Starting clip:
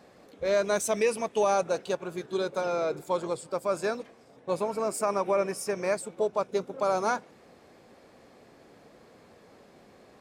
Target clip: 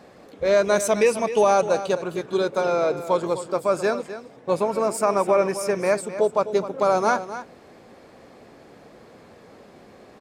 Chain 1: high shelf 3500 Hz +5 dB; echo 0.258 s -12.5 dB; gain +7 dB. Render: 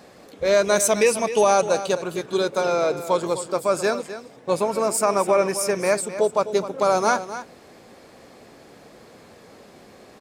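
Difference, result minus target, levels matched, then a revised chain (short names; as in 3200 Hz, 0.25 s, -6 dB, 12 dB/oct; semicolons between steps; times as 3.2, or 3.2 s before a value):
8000 Hz band +6.5 dB
high shelf 3500 Hz -3.5 dB; echo 0.258 s -12.5 dB; gain +7 dB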